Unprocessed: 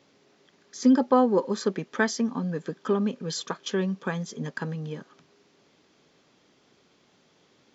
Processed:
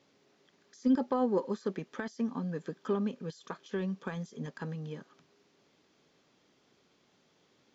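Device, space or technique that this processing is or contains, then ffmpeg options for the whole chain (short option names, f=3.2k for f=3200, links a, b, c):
de-esser from a sidechain: -filter_complex "[0:a]asplit=2[a][b];[b]highpass=4.5k,apad=whole_len=341504[c];[a][c]sidechaincompress=threshold=-51dB:ratio=8:attack=4.4:release=30,volume=-6dB"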